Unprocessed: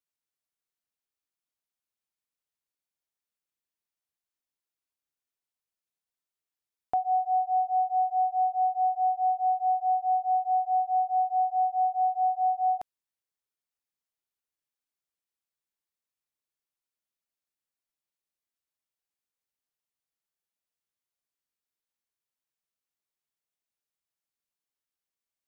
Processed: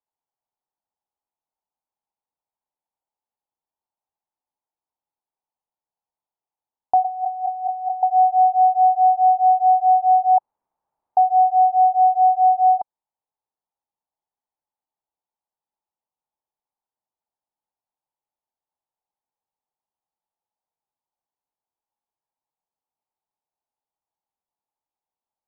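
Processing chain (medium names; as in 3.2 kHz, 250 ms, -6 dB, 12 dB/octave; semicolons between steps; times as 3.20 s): 7.04–8.03 s: compressor with a negative ratio -37 dBFS, ratio -1; 10.38–11.17 s: room tone; resonant low-pass 860 Hz, resonance Q 5.8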